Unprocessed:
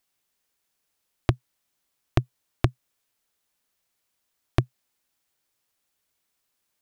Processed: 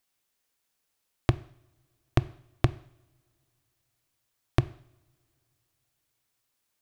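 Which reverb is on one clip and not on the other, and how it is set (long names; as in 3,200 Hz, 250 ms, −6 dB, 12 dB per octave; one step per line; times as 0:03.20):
coupled-rooms reverb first 0.65 s, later 3.2 s, from −26 dB, DRR 15 dB
level −1.5 dB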